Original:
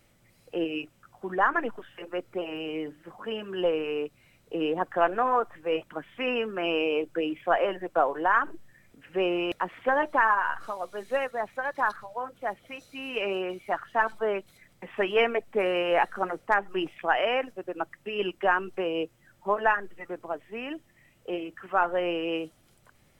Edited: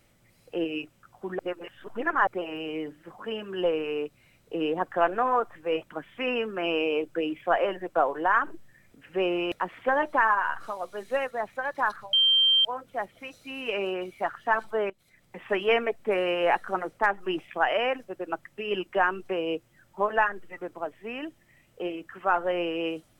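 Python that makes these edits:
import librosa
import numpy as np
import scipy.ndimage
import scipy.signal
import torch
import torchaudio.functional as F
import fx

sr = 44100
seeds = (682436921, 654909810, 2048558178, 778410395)

y = fx.edit(x, sr, fx.reverse_span(start_s=1.39, length_s=0.88),
    fx.insert_tone(at_s=12.13, length_s=0.52, hz=3150.0, db=-17.5),
    fx.fade_in_from(start_s=14.38, length_s=0.47, floor_db=-16.5), tone=tone)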